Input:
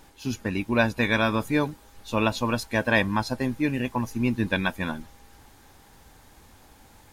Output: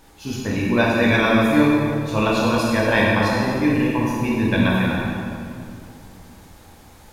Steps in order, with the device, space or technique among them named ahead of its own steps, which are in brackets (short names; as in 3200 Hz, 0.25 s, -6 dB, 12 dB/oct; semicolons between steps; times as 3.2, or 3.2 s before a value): stairwell (reverb RT60 2.4 s, pre-delay 15 ms, DRR -5 dB)